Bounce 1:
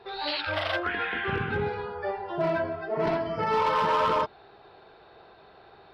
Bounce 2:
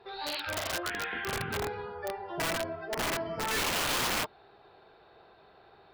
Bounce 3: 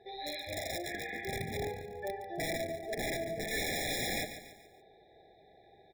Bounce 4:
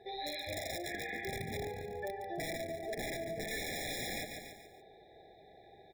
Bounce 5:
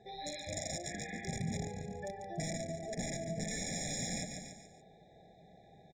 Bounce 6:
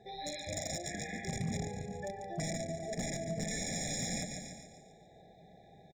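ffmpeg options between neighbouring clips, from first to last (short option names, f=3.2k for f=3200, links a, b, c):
-af "aeval=exprs='(mod(11.2*val(0)+1,2)-1)/11.2':c=same,volume=-5dB"
-filter_complex "[0:a]asplit=2[a][b];[b]aecho=0:1:143|286|429|572:0.282|0.121|0.0521|0.0224[c];[a][c]amix=inputs=2:normalize=0,afftfilt=real='re*eq(mod(floor(b*sr/1024/830),2),0)':imag='im*eq(mod(floor(b*sr/1024/830),2),0)':win_size=1024:overlap=0.75,volume=-2dB"
-af "acompressor=threshold=-39dB:ratio=6,volume=2.5dB"
-af "firequalizer=gain_entry='entry(100,0);entry(170,10);entry(370,-9);entry(560,-2);entry(1000,-7);entry(4000,-6);entry(6700,10);entry(12000,-23)':delay=0.05:min_phase=1,volume=1.5dB"
-af "volume=30.5dB,asoftclip=hard,volume=-30.5dB,aecho=1:1:402:0.126,volume=1.5dB"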